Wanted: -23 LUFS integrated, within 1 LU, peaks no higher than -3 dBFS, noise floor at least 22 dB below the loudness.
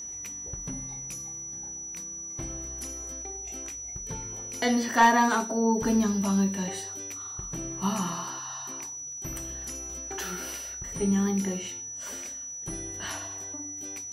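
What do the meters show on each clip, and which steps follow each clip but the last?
tick rate 36 per s; steady tone 5.9 kHz; tone level -36 dBFS; loudness -30.0 LUFS; peak level -9.5 dBFS; loudness target -23.0 LUFS
-> de-click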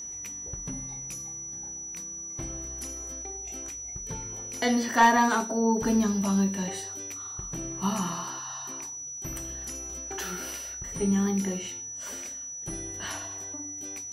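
tick rate 0.14 per s; steady tone 5.9 kHz; tone level -36 dBFS
-> band-stop 5.9 kHz, Q 30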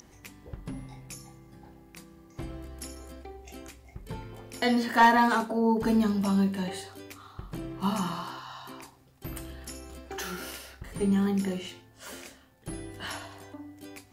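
steady tone not found; loudness -27.5 LUFS; peak level -8.5 dBFS; loudness target -23.0 LUFS
-> trim +4.5 dB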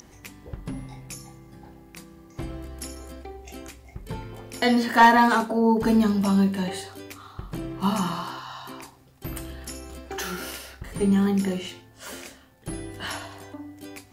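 loudness -23.0 LUFS; peak level -4.0 dBFS; noise floor -53 dBFS

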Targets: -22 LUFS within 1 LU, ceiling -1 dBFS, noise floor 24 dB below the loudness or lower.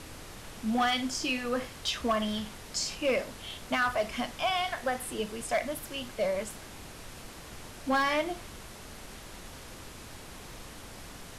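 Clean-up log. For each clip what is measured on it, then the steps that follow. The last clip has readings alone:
clipped samples 0.6%; clipping level -21.5 dBFS; noise floor -47 dBFS; noise floor target -55 dBFS; loudness -31.0 LUFS; peak level -21.5 dBFS; loudness target -22.0 LUFS
-> clip repair -21.5 dBFS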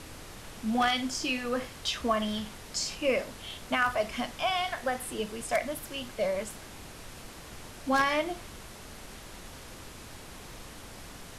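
clipped samples 0.0%; noise floor -47 dBFS; noise floor target -55 dBFS
-> noise print and reduce 8 dB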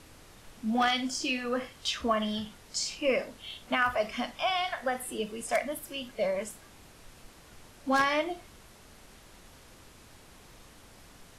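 noise floor -54 dBFS; noise floor target -55 dBFS
-> noise print and reduce 6 dB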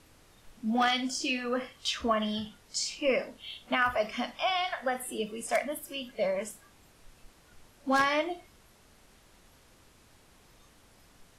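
noise floor -60 dBFS; loudness -30.5 LUFS; peak level -12.5 dBFS; loudness target -22.0 LUFS
-> trim +8.5 dB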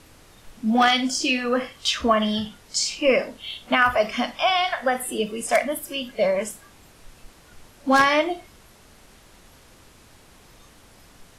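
loudness -22.0 LUFS; peak level -4.0 dBFS; noise floor -52 dBFS

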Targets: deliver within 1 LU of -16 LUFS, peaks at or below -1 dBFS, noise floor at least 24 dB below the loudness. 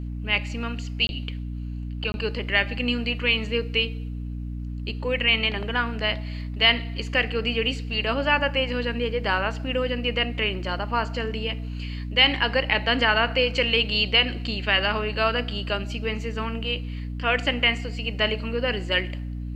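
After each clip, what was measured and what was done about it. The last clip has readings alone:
dropouts 2; longest dropout 21 ms; hum 60 Hz; highest harmonic 300 Hz; hum level -29 dBFS; loudness -24.0 LUFS; peak level -5.0 dBFS; loudness target -16.0 LUFS
-> interpolate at 1.07/2.12 s, 21 ms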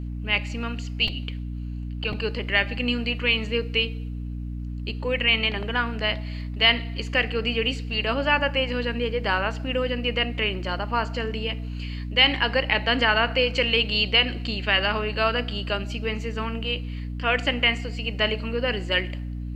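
dropouts 0; hum 60 Hz; highest harmonic 300 Hz; hum level -29 dBFS
-> hum notches 60/120/180/240/300 Hz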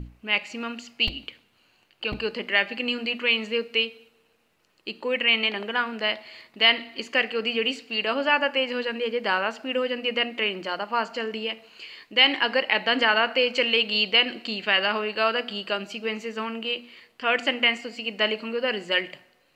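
hum not found; loudness -24.0 LUFS; peak level -5.5 dBFS; loudness target -16.0 LUFS
-> trim +8 dB; peak limiter -1 dBFS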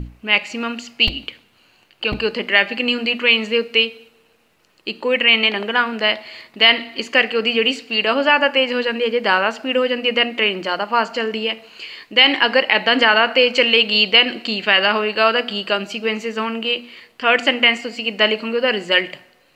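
loudness -16.5 LUFS; peak level -1.0 dBFS; noise floor -57 dBFS

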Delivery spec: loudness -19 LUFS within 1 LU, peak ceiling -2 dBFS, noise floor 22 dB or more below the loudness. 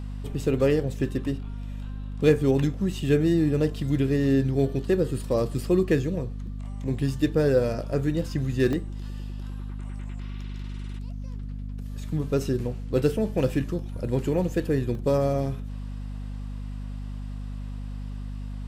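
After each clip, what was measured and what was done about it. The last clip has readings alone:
dropouts 3; longest dropout 1.7 ms; hum 50 Hz; highest harmonic 250 Hz; hum level -31 dBFS; loudness -26.5 LUFS; peak level -7.5 dBFS; loudness target -19.0 LUFS
-> interpolate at 6.47/8.73/14.95 s, 1.7 ms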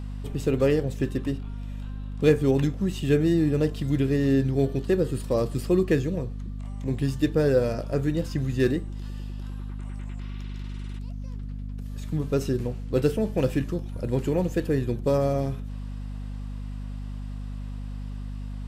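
dropouts 0; hum 50 Hz; highest harmonic 250 Hz; hum level -31 dBFS
-> de-hum 50 Hz, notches 5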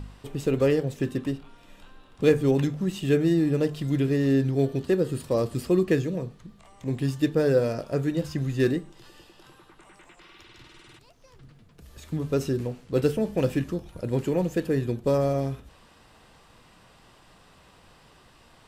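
hum not found; loudness -26.0 LUFS; peak level -8.0 dBFS; loudness target -19.0 LUFS
-> trim +7 dB; peak limiter -2 dBFS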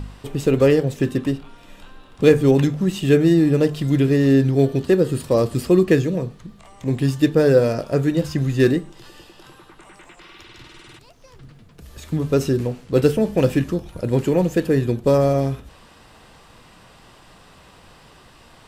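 loudness -19.0 LUFS; peak level -2.0 dBFS; noise floor -49 dBFS

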